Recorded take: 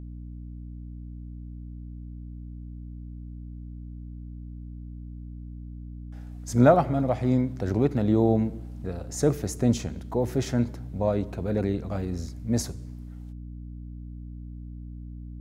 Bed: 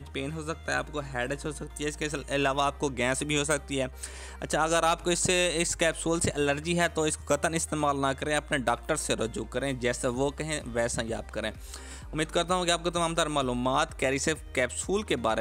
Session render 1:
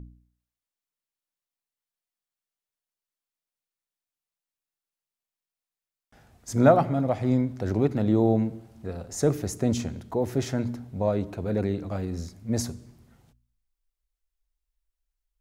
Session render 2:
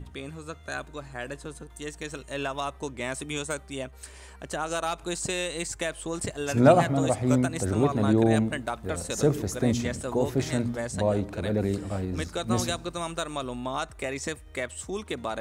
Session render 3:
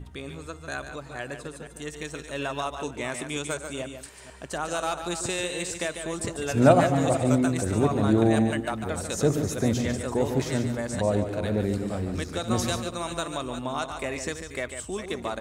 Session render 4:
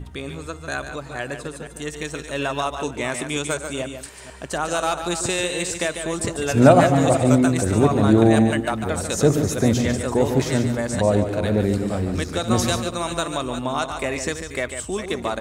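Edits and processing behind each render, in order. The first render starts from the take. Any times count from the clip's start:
de-hum 60 Hz, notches 5
add bed -5 dB
reverse delay 0.239 s, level -10.5 dB; echo 0.145 s -8.5 dB
gain +6 dB; limiter -1 dBFS, peak gain reduction 2.5 dB

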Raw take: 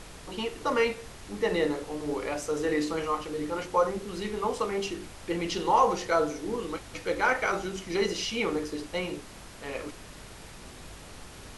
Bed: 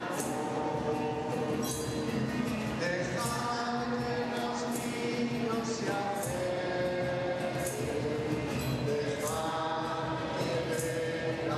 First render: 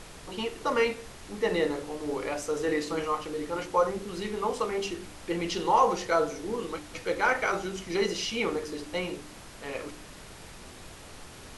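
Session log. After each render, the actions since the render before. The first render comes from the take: de-hum 50 Hz, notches 6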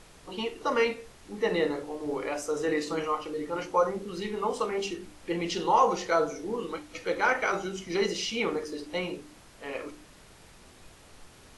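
noise print and reduce 7 dB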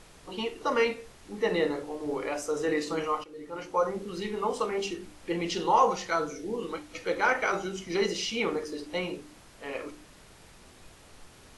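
3.24–4 fade in, from -14.5 dB; 5.91–6.61 bell 300 Hz -> 1400 Hz -10 dB 0.74 oct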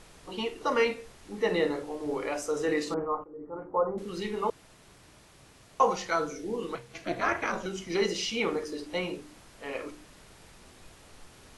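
2.94–3.98 inverse Chebyshev low-pass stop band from 3900 Hz, stop band 60 dB; 4.5–5.8 room tone; 6.75–7.66 ring modulator 170 Hz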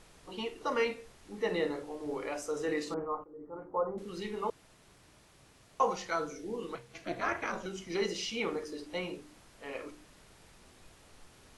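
gain -5 dB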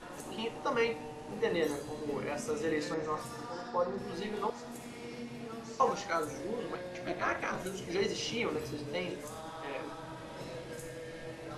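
add bed -11.5 dB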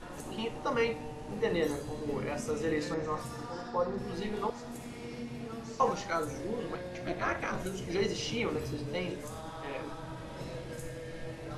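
low shelf 130 Hz +11.5 dB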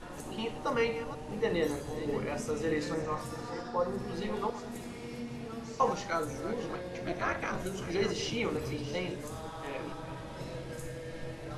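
reverse delay 0.451 s, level -12 dB

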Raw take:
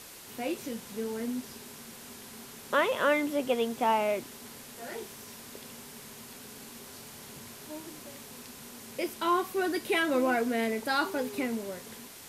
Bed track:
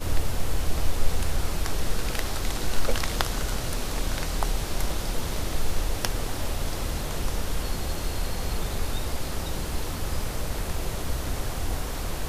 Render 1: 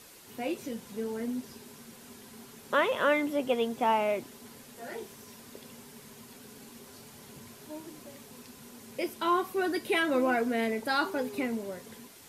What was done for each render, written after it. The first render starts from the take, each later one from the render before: denoiser 6 dB, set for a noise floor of -48 dBFS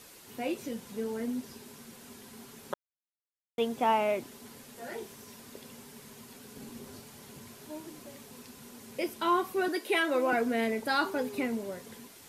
2.74–3.58 mute; 6.56–7 low shelf 460 Hz +7.5 dB; 9.68–10.33 HPF 300 Hz 24 dB/oct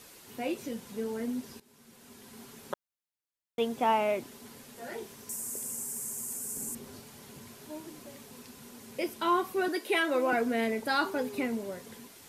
1.6–2.41 fade in, from -17.5 dB; 5.29–6.75 resonant high shelf 5600 Hz +14 dB, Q 3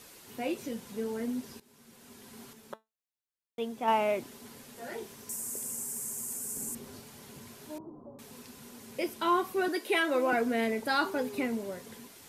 2.53–3.88 resonator 220 Hz, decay 0.19 s; 7.78–8.19 steep low-pass 1100 Hz 48 dB/oct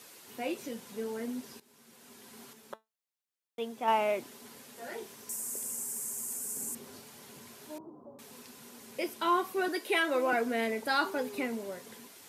HPF 79 Hz; low shelf 200 Hz -9 dB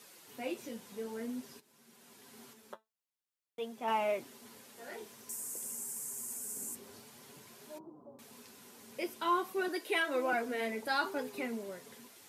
flange 0.52 Hz, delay 4.7 ms, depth 6.3 ms, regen -38%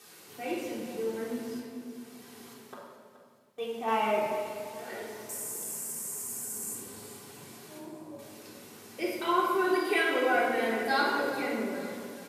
feedback echo 0.425 s, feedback 43%, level -14.5 dB; shoebox room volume 1900 m³, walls mixed, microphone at 3.6 m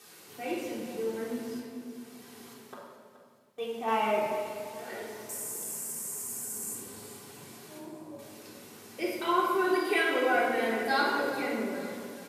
nothing audible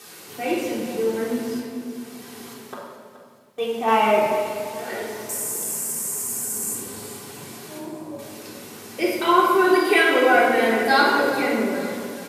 gain +10 dB

